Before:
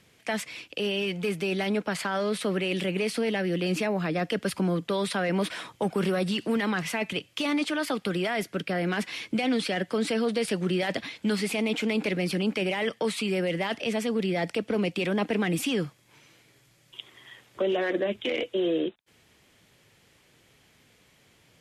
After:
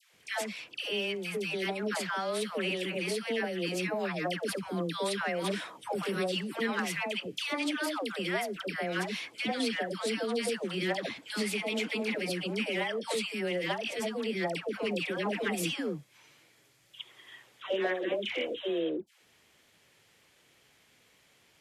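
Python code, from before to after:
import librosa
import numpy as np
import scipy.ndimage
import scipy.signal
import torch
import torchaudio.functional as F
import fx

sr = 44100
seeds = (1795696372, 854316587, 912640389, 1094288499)

y = fx.low_shelf(x, sr, hz=300.0, db=-9.0)
y = fx.dispersion(y, sr, late='lows', ms=138.0, hz=860.0)
y = y * 10.0 ** (-2.0 / 20.0)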